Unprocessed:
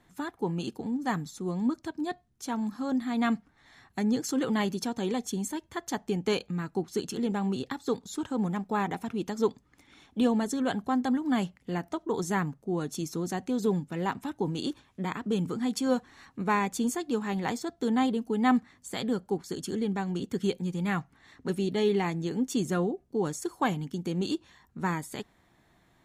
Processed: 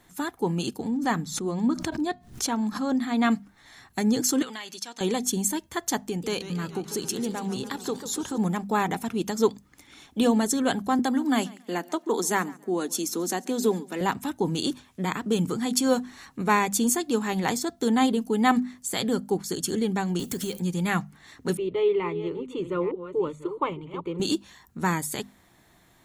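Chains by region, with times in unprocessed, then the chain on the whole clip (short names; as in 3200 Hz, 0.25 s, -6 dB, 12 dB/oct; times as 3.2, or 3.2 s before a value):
0.88–3.31 high shelf 7100 Hz -11.5 dB + notches 60/120/180 Hz + backwards sustainer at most 110 dB/s
4.42–5.01 band-pass 3200 Hz, Q 0.62 + compressor 5:1, threshold -38 dBFS
6.06–8.38 compressor 2:1, threshold -33 dBFS + warbling echo 0.143 s, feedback 67%, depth 180 cents, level -12 dB
10.99–14.01 steep high-pass 210 Hz + feedback echo 0.139 s, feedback 24%, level -22.5 dB
20.19–20.6 G.711 law mismatch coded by mu + compressor 5:1, threshold -31 dBFS + high shelf 7800 Hz +8.5 dB
21.57–24.2 reverse delay 0.448 s, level -11 dB + LPF 2000 Hz + fixed phaser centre 1100 Hz, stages 8
whole clip: high shelf 5700 Hz +11 dB; notches 50/100/150/200/250 Hz; gain +4.5 dB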